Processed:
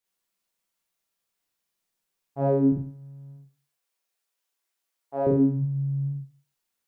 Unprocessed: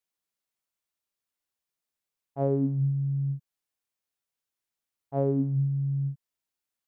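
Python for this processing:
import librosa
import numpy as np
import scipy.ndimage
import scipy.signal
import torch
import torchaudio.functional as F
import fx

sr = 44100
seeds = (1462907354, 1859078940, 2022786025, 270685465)

y = fx.highpass(x, sr, hz=360.0, slope=12, at=(2.72, 5.27))
y = fx.rev_schroeder(y, sr, rt60_s=0.36, comb_ms=33, drr_db=-4.5)
y = F.gain(torch.from_numpy(y), 1.0).numpy()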